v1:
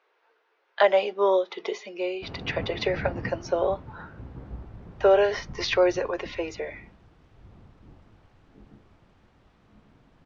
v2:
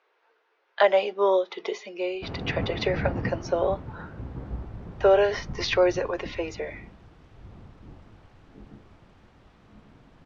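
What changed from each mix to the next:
background +4.5 dB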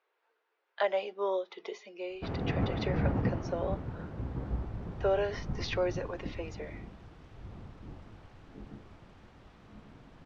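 speech -10.0 dB

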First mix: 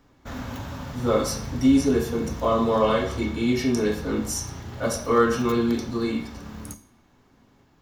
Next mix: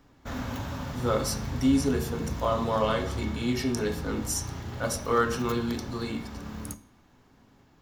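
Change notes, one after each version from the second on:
speech: send -7.0 dB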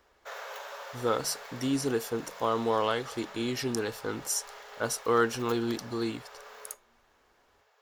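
speech: send off; background: add rippled Chebyshev high-pass 420 Hz, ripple 3 dB

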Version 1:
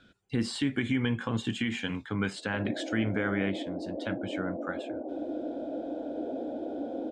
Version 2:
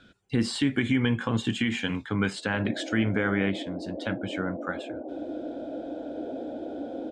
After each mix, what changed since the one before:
speech +4.0 dB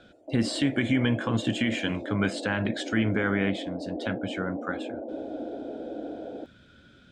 background: entry -2.25 s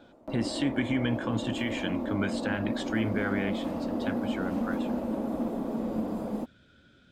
speech -4.5 dB; background: remove Chebyshev band-pass 290–730 Hz, order 3

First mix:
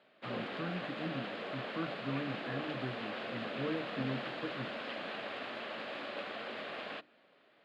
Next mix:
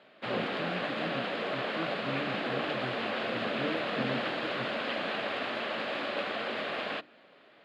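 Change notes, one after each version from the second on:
background +8.0 dB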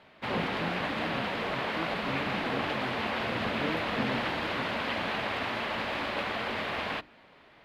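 background: remove speaker cabinet 220–9300 Hz, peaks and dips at 570 Hz +3 dB, 930 Hz -8 dB, 2100 Hz -4 dB, 5800 Hz -9 dB, 8500 Hz -7 dB

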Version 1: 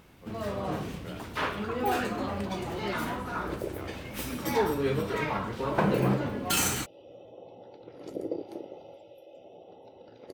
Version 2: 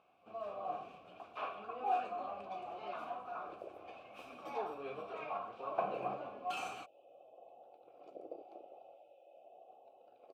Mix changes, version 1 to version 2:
speech -7.5 dB; master: add vowel filter a

